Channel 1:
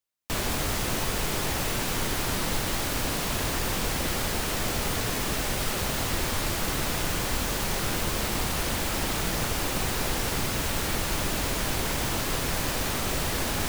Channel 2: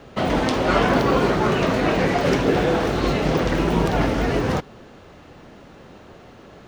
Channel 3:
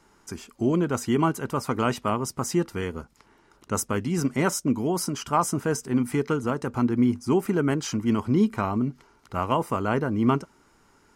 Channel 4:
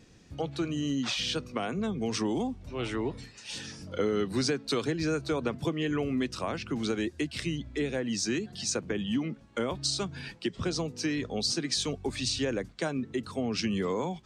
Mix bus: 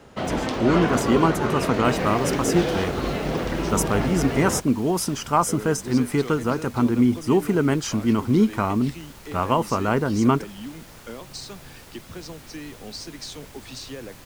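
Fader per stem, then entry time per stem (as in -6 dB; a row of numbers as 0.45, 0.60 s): -17.5, -5.5, +3.0, -7.0 dB; 1.55, 0.00, 0.00, 1.50 s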